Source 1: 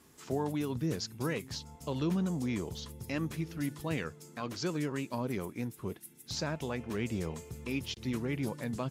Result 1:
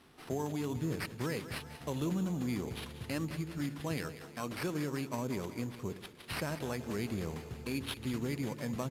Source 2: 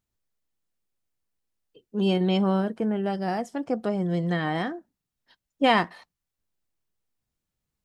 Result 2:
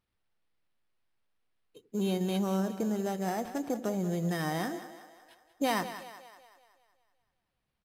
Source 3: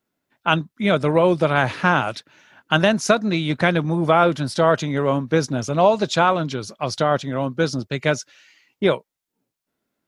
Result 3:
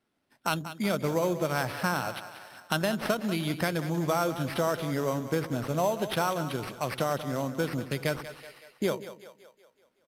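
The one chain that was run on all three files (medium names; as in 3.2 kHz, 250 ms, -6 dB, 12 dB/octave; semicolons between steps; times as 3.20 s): sample-rate reducer 6.9 kHz, jitter 0%; dynamic bell 7.4 kHz, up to -6 dB, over -46 dBFS, Q 2.4; compression 2:1, threshold -33 dBFS; resampled via 32 kHz; on a send: two-band feedback delay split 440 Hz, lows 88 ms, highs 188 ms, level -12 dB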